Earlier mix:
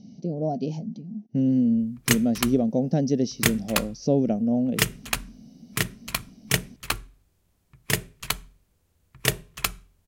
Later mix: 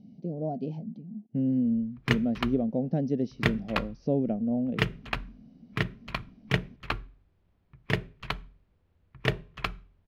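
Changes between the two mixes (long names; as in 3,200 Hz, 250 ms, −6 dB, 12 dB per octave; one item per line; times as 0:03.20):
speech −4.5 dB
master: add high-frequency loss of the air 330 metres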